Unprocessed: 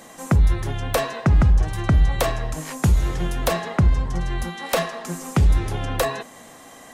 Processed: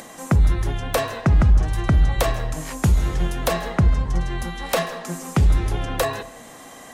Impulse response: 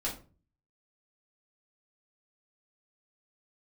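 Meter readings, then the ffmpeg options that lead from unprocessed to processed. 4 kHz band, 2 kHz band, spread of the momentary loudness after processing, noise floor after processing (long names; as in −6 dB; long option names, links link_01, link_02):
0.0 dB, 0.0 dB, 11 LU, −42 dBFS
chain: -filter_complex "[0:a]acompressor=mode=upward:threshold=-36dB:ratio=2.5,asplit=2[link_01][link_02];[1:a]atrim=start_sample=2205,adelay=137[link_03];[link_02][link_03]afir=irnorm=-1:irlink=0,volume=-20.5dB[link_04];[link_01][link_04]amix=inputs=2:normalize=0"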